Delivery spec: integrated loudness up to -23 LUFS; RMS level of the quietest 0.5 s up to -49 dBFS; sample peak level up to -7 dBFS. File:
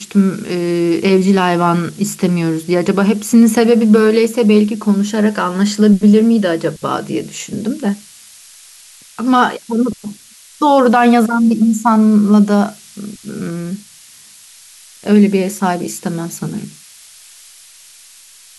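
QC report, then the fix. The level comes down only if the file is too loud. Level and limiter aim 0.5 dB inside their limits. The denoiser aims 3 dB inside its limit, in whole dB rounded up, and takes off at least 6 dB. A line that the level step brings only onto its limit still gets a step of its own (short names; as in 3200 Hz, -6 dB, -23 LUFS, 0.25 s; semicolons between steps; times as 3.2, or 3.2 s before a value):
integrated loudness -13.5 LUFS: fail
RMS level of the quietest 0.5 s -42 dBFS: fail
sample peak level -1.5 dBFS: fail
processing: gain -10 dB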